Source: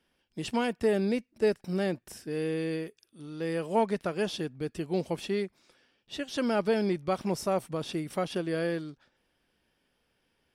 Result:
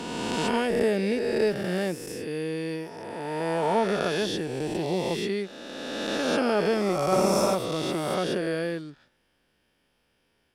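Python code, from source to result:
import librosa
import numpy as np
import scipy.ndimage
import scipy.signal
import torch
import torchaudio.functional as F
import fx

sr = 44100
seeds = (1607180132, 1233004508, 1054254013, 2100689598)

y = fx.spec_swells(x, sr, rise_s=2.38)
y = fx.room_flutter(y, sr, wall_m=9.7, rt60_s=1.1, at=(7.11, 7.54), fade=0.02)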